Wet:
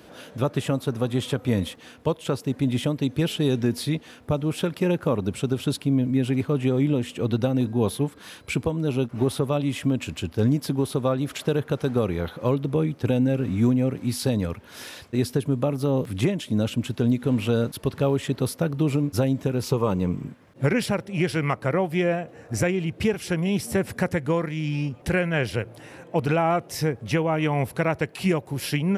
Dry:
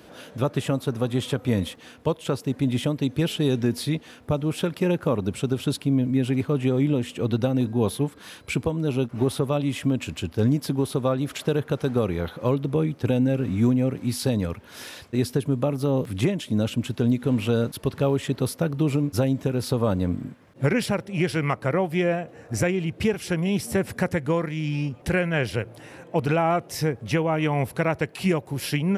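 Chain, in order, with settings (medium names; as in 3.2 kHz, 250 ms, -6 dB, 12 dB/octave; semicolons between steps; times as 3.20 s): 19.63–20.28 s: rippled EQ curve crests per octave 0.75, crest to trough 8 dB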